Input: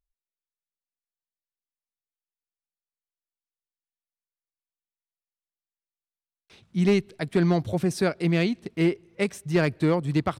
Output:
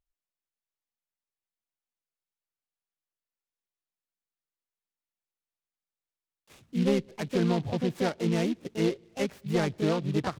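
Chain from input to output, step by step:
treble cut that deepens with the level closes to 2,100 Hz, closed at −22 dBFS
in parallel at −3 dB: brickwall limiter −23.5 dBFS, peak gain reduction 10.5 dB
on the sum: pitch-shifted copies added +5 semitones −4 dB
short delay modulated by noise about 2,900 Hz, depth 0.047 ms
level −7.5 dB

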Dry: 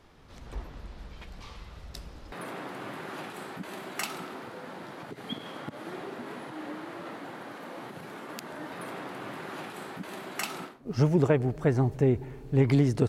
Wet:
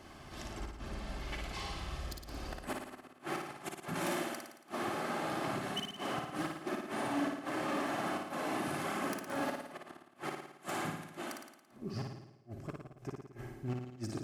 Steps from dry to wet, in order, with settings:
phase shifter 1.2 Hz, delay 3.4 ms, feedback 23%
reversed playback
downward compressor 16 to 1, threshold −35 dBFS, peak gain reduction 19.5 dB
reversed playback
gate with flip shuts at −30 dBFS, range −40 dB
wave folding −34.5 dBFS
bass and treble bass −5 dB, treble +4 dB
notch comb filter 520 Hz
wrong playback speed 48 kHz file played as 44.1 kHz
parametric band 3,800 Hz −4.5 dB 0.28 octaves
on a send: flutter between parallel walls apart 9.6 metres, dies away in 0.82 s
on the sum: level +6 dB

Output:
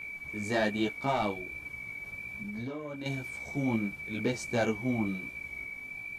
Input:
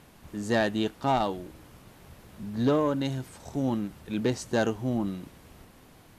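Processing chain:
steady tone 2,300 Hz −35 dBFS
multi-voice chorus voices 2, 1.2 Hz, delay 17 ms, depth 3.3 ms
0:01.32–0:03.06: downward compressor 12 to 1, threshold −35 dBFS, peak gain reduction 13.5 dB

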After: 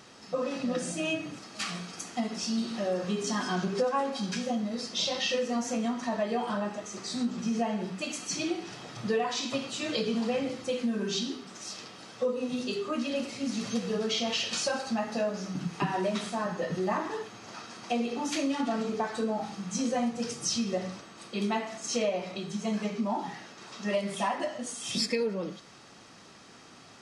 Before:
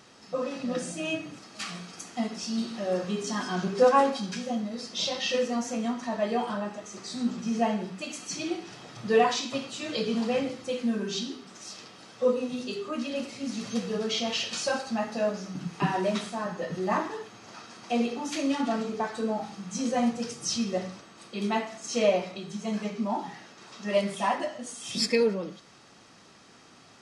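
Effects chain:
downward compressor 5 to 1, threshold −28 dBFS, peak gain reduction 12 dB
level +2 dB

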